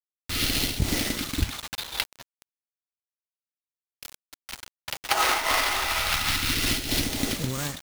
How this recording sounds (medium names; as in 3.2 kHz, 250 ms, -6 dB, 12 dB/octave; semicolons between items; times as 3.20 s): aliases and images of a low sample rate 7.6 kHz, jitter 20%; phasing stages 2, 0.32 Hz, lowest notch 170–1100 Hz; a quantiser's noise floor 6-bit, dither none; random flutter of the level